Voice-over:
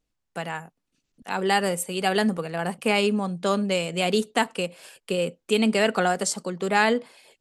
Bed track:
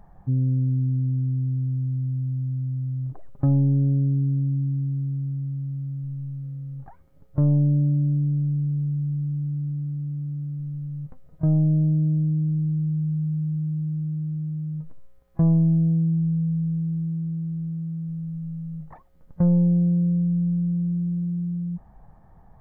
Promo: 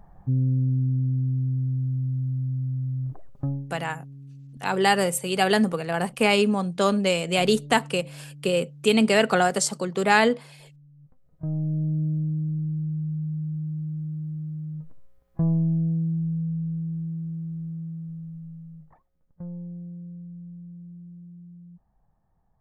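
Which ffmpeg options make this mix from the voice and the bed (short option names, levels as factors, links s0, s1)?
-filter_complex "[0:a]adelay=3350,volume=1.26[s0];[1:a]volume=6.68,afade=t=out:st=3.14:d=0.53:silence=0.0944061,afade=t=in:st=10.96:d=1.06:silence=0.141254,afade=t=out:st=17.83:d=1.46:silence=0.199526[s1];[s0][s1]amix=inputs=2:normalize=0"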